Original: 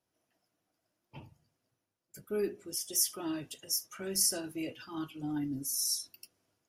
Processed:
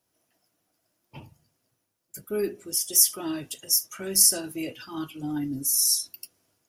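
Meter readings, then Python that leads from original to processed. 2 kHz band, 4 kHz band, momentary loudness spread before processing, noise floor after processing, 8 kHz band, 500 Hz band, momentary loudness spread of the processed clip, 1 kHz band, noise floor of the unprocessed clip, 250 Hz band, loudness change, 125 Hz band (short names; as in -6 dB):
+5.5 dB, +8.5 dB, 12 LU, -77 dBFS, +10.5 dB, +5.0 dB, 17 LU, +5.0 dB, -85 dBFS, +5.0 dB, +10.5 dB, +5.0 dB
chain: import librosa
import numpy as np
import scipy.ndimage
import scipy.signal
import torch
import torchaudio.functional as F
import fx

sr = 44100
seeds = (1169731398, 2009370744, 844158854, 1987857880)

y = fx.high_shelf(x, sr, hz=6500.0, db=8.5)
y = y * librosa.db_to_amplitude(5.0)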